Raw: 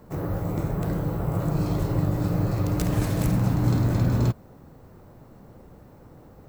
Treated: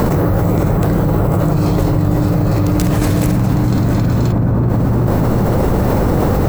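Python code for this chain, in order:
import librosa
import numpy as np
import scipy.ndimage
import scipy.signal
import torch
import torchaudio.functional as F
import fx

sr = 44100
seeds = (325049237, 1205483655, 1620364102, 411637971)

y = fx.echo_wet_lowpass(x, sr, ms=380, feedback_pct=32, hz=1300.0, wet_db=-8.0)
y = fx.env_flatten(y, sr, amount_pct=100)
y = F.gain(torch.from_numpy(y), 5.5).numpy()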